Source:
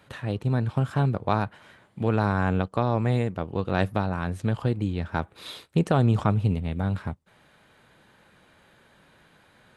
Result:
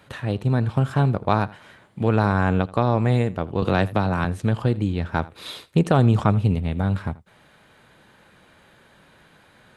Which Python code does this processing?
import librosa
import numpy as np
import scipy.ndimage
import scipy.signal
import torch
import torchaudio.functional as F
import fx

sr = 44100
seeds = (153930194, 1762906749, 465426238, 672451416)

y = x + 10.0 ** (-20.5 / 20.0) * np.pad(x, (int(82 * sr / 1000.0), 0))[:len(x)]
y = fx.band_squash(y, sr, depth_pct=70, at=(3.62, 4.25))
y = y * 10.0 ** (4.0 / 20.0)